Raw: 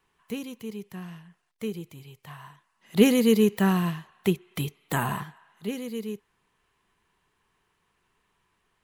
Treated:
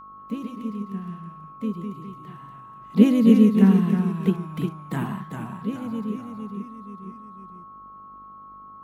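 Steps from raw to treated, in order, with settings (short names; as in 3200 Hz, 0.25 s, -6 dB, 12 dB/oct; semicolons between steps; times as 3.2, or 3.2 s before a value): buzz 50 Hz, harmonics 17, -58 dBFS -3 dB/oct; high shelf 5500 Hz -9.5 dB; echoes that change speed 0.105 s, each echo -1 st, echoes 3, each echo -6 dB; bell 210 Hz +13 dB 0.93 oct; whine 1100 Hz -35 dBFS; harmoniser +3 st -11 dB; gain -6.5 dB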